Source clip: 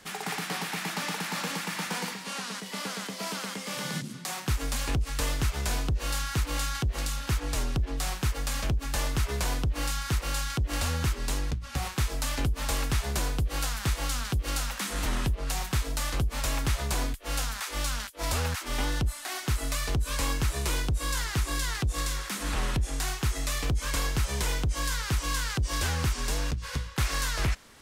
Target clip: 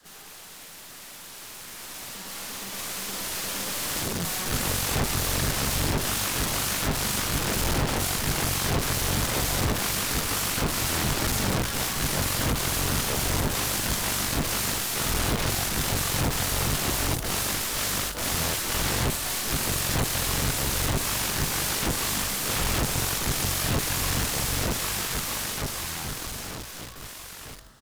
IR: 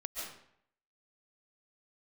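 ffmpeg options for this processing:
-filter_complex "[0:a]equalizer=f=2.3k:w=4.9:g=-13.5,asplit=2[a][b];[b]asetrate=66075,aresample=44100,atempo=0.66742,volume=-13dB[c];[a][c]amix=inputs=2:normalize=0,asplit=2[d][e];[1:a]atrim=start_sample=2205,adelay=18[f];[e][f]afir=irnorm=-1:irlink=0,volume=-20dB[g];[d][g]amix=inputs=2:normalize=0,aeval=exprs='(tanh(44.7*val(0)+0.75)-tanh(0.75))/44.7':c=same,asplit=2[h][i];[i]adelay=46,volume=-6dB[j];[h][j]amix=inputs=2:normalize=0,aeval=exprs='(mod(100*val(0)+1,2)-1)/100':c=same,aresample=32000,aresample=44100,acrusher=bits=2:mode=log:mix=0:aa=0.000001,dynaudnorm=f=440:g=13:m=16dB,adynamicequalizer=threshold=0.00794:dfrequency=120:dqfactor=0.71:tfrequency=120:tqfactor=0.71:attack=5:release=100:ratio=0.375:range=2.5:mode=boostabove:tftype=bell"

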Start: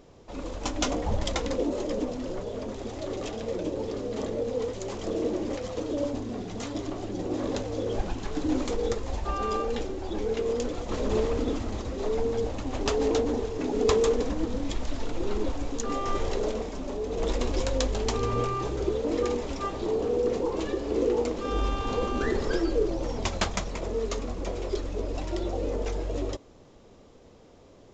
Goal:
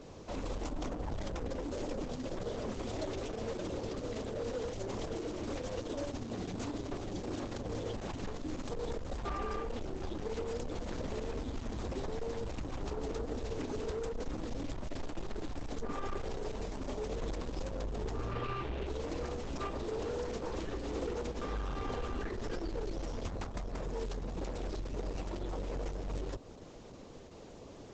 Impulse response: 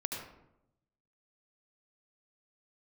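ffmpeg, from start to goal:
-filter_complex "[0:a]acrossover=split=100|1300[a][b][c];[a]acompressor=threshold=-33dB:ratio=4[d];[b]acompressor=threshold=-37dB:ratio=4[e];[c]acompressor=threshold=-49dB:ratio=4[f];[d][e][f]amix=inputs=3:normalize=0,asettb=1/sr,asplit=3[g][h][i];[g]atrim=end=18.324[j];[h]atrim=start=18.32:end=18.87,asetpts=PTS-STARTPTS,afade=t=in:d=0.004:c=qsin,afade=t=out:st=0.546:d=0.004:c=qsin,lowpass=f=2.8k:t=q:w=3.1[k];[i]atrim=start=18.866[l];[j][k]acrossfade=d=0.004:c1=hsin:c2=qsin[m];[m][l]acrossfade=d=0.004:c1=qsin:c2=hsin,asoftclip=type=tanh:threshold=-36dB,volume=4dB" -ar 48000 -c:a libopus -b:a 10k

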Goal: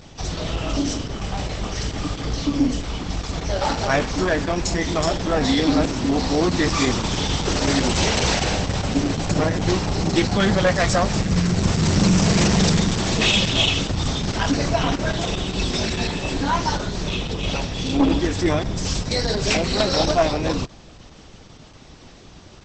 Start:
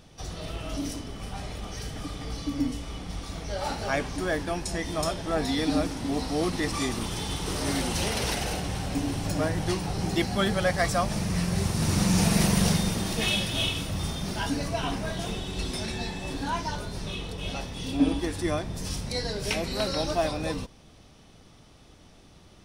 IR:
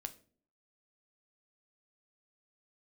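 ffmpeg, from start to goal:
-af "aeval=exprs='0.355*(cos(1*acos(clip(val(0)/0.355,-1,1)))-cos(1*PI/2))+0.158*(cos(5*acos(clip(val(0)/0.355,-1,1)))-cos(5*PI/2))+0.0562*(cos(6*acos(clip(val(0)/0.355,-1,1)))-cos(6*PI/2))':c=same" -ar 48000 -c:a libopus -b:a 10k

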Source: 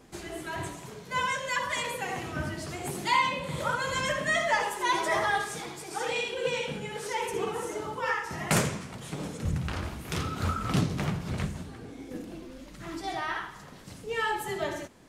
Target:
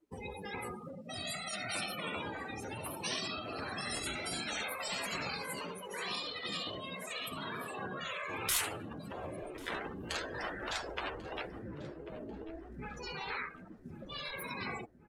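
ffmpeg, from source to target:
-filter_complex "[0:a]asetrate=55563,aresample=44100,atempo=0.793701,afftdn=nr=30:nf=-40,afftfilt=real='re*lt(hypot(re,im),0.0631)':imag='im*lt(hypot(re,im),0.0631)':win_size=1024:overlap=0.75,asplit=2[a][b];[b]adelay=1092,lowpass=f=2.6k:p=1,volume=-16dB,asplit=2[c][d];[d]adelay=1092,lowpass=f=2.6k:p=1,volume=0.53,asplit=2[e][f];[f]adelay=1092,lowpass=f=2.6k:p=1,volume=0.53,asplit=2[g][h];[h]adelay=1092,lowpass=f=2.6k:p=1,volume=0.53,asplit=2[i][j];[j]adelay=1092,lowpass=f=2.6k:p=1,volume=0.53[k];[a][c][e][g][i][k]amix=inputs=6:normalize=0,volume=1dB"

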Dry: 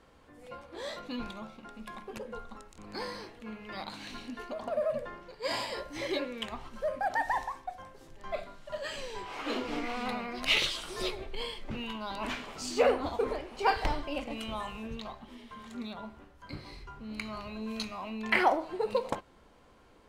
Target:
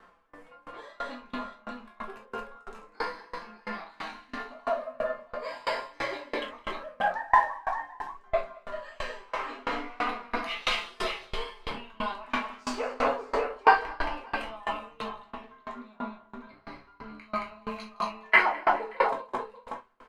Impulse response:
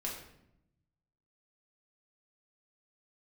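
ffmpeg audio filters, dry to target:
-filter_complex "[0:a]equalizer=f=1.2k:t=o:w=2.3:g=14.5,aecho=1:1:162|222|425|590:0.282|0.501|0.112|0.376,flanger=delay=5.6:depth=2.7:regen=53:speed=0.28:shape=triangular,asettb=1/sr,asplit=3[a][b][c];[a]atrim=end=15.304[d];[b]atrim=start=15.3:end=17.22,asetpts=PTS-STARTPTS,afade=t=in:d=0.004:c=qsin,afade=t=out:st=1.916:d=0.004:c=qsin,highshelf=f=4.3k:g=-9.5[e];[c]atrim=start=17.216[f];[d][e]acrossfade=d=0.004:c1=hsin:c2=qsin[g];[g][f]acrossfade=d=0.004:c1=qsin:c2=hsin[h];[1:a]atrim=start_sample=2205,atrim=end_sample=3528[i];[h][i]afir=irnorm=-1:irlink=0,aeval=exprs='val(0)*pow(10,-28*if(lt(mod(3*n/s,1),2*abs(3)/1000),1-mod(3*n/s,1)/(2*abs(3)/1000),(mod(3*n/s,1)-2*abs(3)/1000)/(1-2*abs(3)/1000))/20)':c=same,volume=3.5dB"

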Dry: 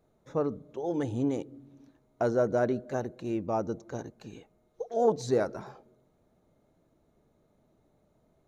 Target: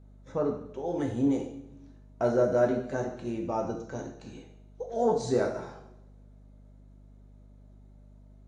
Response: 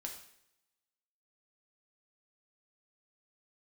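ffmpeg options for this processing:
-filter_complex "[1:a]atrim=start_sample=2205[a];[0:a][a]afir=irnorm=-1:irlink=0,aeval=exprs='val(0)+0.00178*(sin(2*PI*50*n/s)+sin(2*PI*2*50*n/s)/2+sin(2*PI*3*50*n/s)/3+sin(2*PI*4*50*n/s)/4+sin(2*PI*5*50*n/s)/5)':c=same,acontrast=63,volume=-3dB" -ar 22050 -c:a aac -b:a 48k

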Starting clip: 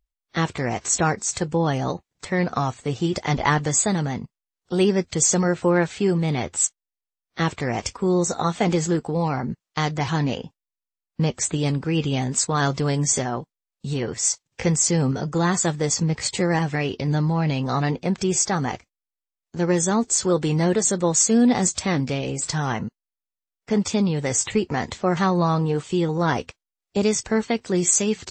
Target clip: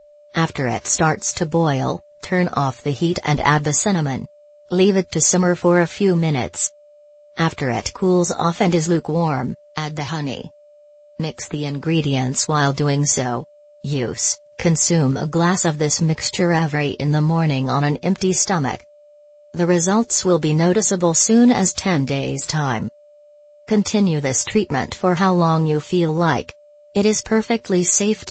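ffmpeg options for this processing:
-filter_complex "[0:a]asettb=1/sr,asplit=3[a][b][c];[a]atrim=end=9.484[d];[b]atrim=start=9.48:end=11.85,asetpts=PTS-STARTPTS,afade=t=in:d=0.004:c=qsin,afade=t=out:st=2.366:d=0.004:c=qsin,acrossover=split=230|2900[e][f][g];[e]acompressor=threshold=-32dB:ratio=4[h];[f]acompressor=threshold=-29dB:ratio=4[i];[g]acompressor=threshold=-36dB:ratio=4[j];[h][i][j]amix=inputs=3:normalize=0[k];[c]atrim=start=11.846[l];[d][k]acrossfade=d=0.004:c1=hsin:c2=qsin[m];[m][l]acrossfade=d=0.004:c1=qsin:c2=hsin,aeval=exprs='val(0)+0.00316*sin(2*PI*590*n/s)':c=same,volume=4.5dB" -ar 16000 -c:a pcm_mulaw

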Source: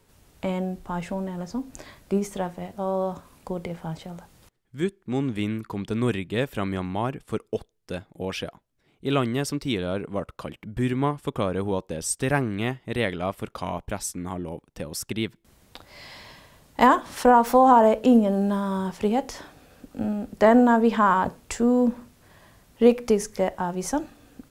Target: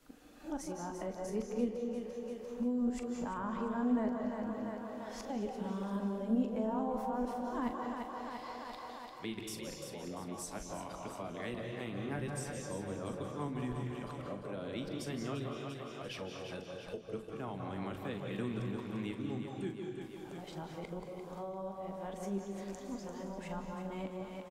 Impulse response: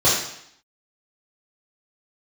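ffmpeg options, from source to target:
-filter_complex "[0:a]areverse,highshelf=f=8.8k:g=-4,aecho=1:1:345|690|1035|1380|1725|2070:0.376|0.195|0.102|0.0528|0.0275|0.0143,asplit=2[a][b];[1:a]atrim=start_sample=2205,adelay=149[c];[b][c]afir=irnorm=-1:irlink=0,volume=-24.5dB[d];[a][d]amix=inputs=2:normalize=0,acrossover=split=260[e][f];[f]acompressor=threshold=-36dB:ratio=4[g];[e][g]amix=inputs=2:normalize=0,flanger=delay=6.4:depth=3.3:regen=-77:speed=0.29:shape=sinusoidal,equalizer=f=99:t=o:w=2:g=-13.5,asplit=2[h][i];[i]adelay=41,volume=-11dB[j];[h][j]amix=inputs=2:normalize=0,volume=-1.5dB"

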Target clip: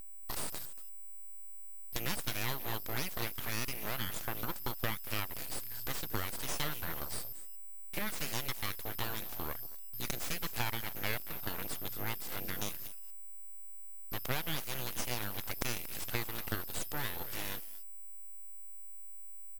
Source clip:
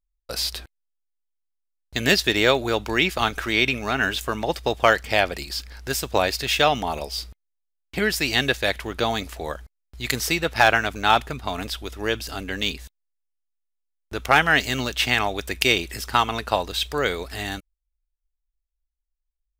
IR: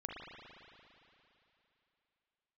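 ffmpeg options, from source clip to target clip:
-af "acompressor=threshold=-31dB:ratio=3,aeval=exprs='val(0)+0.0126*sin(2*PI*13000*n/s)':c=same,aecho=1:1:232:0.2,aeval=exprs='abs(val(0))':c=same,volume=-3.5dB"

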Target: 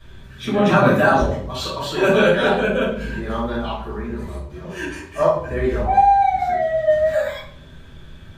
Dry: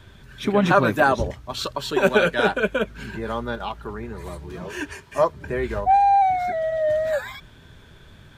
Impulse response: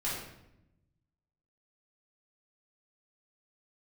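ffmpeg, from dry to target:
-filter_complex "[0:a]asettb=1/sr,asplit=3[a][b][c];[a]atrim=end=4.244[d];[b]atrim=start=4.24:end=4.76,asetpts=PTS-STARTPTS,afade=t=in:d=0.004:c=qsin,afade=t=out:st=0.516:d=0.004:c=qsin,agate=range=-33dB:threshold=-29dB:ratio=3:detection=peak[e];[c]atrim=start=4.756[f];[d][e]acrossfade=d=0.004:c1=hsin:c2=qsin[g];[g][f]acrossfade=d=0.004:c1=qsin:c2=hsin[h];[1:a]atrim=start_sample=2205,asetrate=70560,aresample=44100[i];[h][i]afir=irnorm=-1:irlink=0,volume=1dB"

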